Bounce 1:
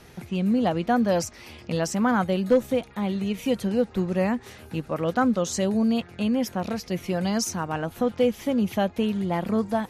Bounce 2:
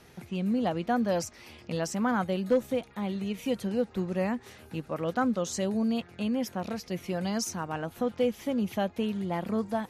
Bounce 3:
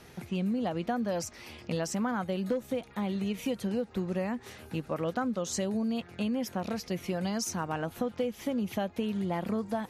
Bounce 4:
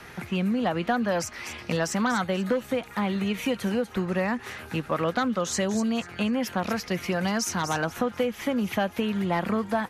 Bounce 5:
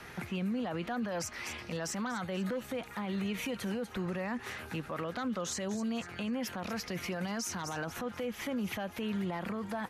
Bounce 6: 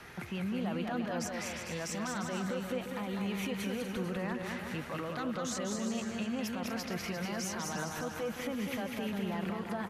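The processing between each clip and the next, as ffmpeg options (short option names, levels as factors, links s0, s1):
-af "lowshelf=f=67:g=-6,volume=0.562"
-af "acompressor=threshold=0.0316:ratio=6,volume=1.33"
-filter_complex "[0:a]acrossover=split=360|1200|2000[s0][s1][s2][s3];[s2]aeval=exprs='0.0299*sin(PI/2*2.82*val(0)/0.0299)':c=same[s4];[s3]aecho=1:1:243|486|729:0.398|0.111|0.0312[s5];[s0][s1][s4][s5]amix=inputs=4:normalize=0,volume=1.68"
-af "alimiter=level_in=1.06:limit=0.0631:level=0:latency=1:release=32,volume=0.944,volume=0.668"
-af "aecho=1:1:200|350|462.5|546.9|610.2:0.631|0.398|0.251|0.158|0.1,volume=0.794"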